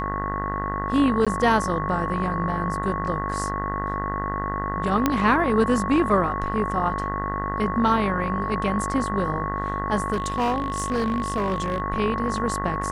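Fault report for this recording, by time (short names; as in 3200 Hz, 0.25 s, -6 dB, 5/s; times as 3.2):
buzz 50 Hz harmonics 40 -30 dBFS
tone 1100 Hz -28 dBFS
1.25–1.27 gap 16 ms
5.06 pop -6 dBFS
10.12–11.8 clipped -19 dBFS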